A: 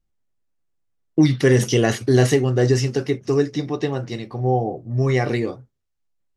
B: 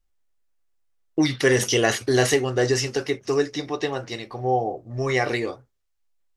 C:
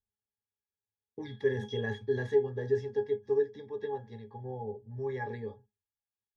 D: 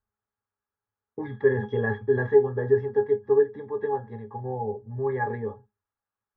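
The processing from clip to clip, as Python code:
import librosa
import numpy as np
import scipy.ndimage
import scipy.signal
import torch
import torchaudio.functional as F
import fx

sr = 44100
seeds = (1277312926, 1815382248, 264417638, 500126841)

y1 = fx.peak_eq(x, sr, hz=160.0, db=-14.0, octaves=2.2)
y1 = y1 * librosa.db_to_amplitude(3.0)
y2 = fx.octave_resonator(y1, sr, note='G#', decay_s=0.15)
y3 = fx.lowpass_res(y2, sr, hz=1300.0, q=2.5)
y3 = y3 * librosa.db_to_amplitude(7.0)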